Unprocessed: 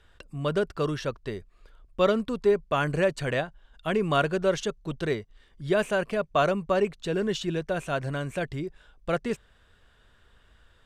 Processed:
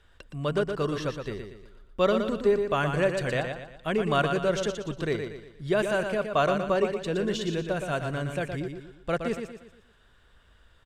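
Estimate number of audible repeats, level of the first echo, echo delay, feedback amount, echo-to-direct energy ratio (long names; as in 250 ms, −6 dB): 4, −6.5 dB, 118 ms, 41%, −5.5 dB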